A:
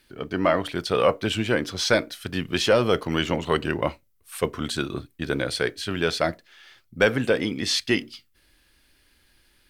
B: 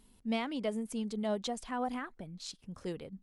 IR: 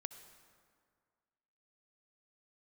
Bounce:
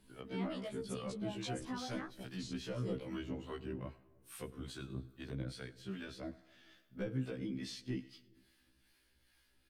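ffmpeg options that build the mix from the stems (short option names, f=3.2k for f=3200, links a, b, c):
-filter_complex "[0:a]acrossover=split=290[a][b];[b]acompressor=threshold=-41dB:ratio=3[c];[a][c]amix=inputs=2:normalize=0,volume=-10dB,asplit=3[d][e][f];[e]volume=-3.5dB[g];[f]volume=-17dB[h];[1:a]alimiter=level_in=8dB:limit=-24dB:level=0:latency=1:release=84,volume=-8dB,volume=2dB[i];[2:a]atrim=start_sample=2205[j];[g][j]afir=irnorm=-1:irlink=0[k];[h]aecho=0:1:101|202|303|404|505|606:1|0.4|0.16|0.064|0.0256|0.0102[l];[d][i][k][l]amix=inputs=4:normalize=0,acrossover=split=640[m][n];[m]aeval=exprs='val(0)*(1-0.5/2+0.5/2*cos(2*PI*2.4*n/s))':c=same[o];[n]aeval=exprs='val(0)*(1-0.5/2-0.5/2*cos(2*PI*2.4*n/s))':c=same[p];[o][p]amix=inputs=2:normalize=0,afftfilt=real='re*1.73*eq(mod(b,3),0)':imag='im*1.73*eq(mod(b,3),0)':win_size=2048:overlap=0.75"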